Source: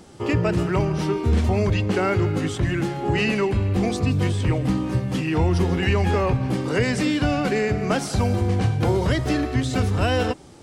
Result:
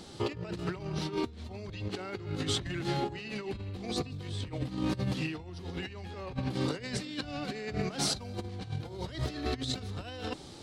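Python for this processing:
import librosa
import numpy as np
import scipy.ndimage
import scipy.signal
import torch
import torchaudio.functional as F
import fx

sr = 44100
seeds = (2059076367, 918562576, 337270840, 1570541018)

y = fx.peak_eq(x, sr, hz=4000.0, db=11.5, octaves=0.7)
y = fx.over_compress(y, sr, threshold_db=-26.0, ratio=-0.5)
y = y * 10.0 ** (-8.5 / 20.0)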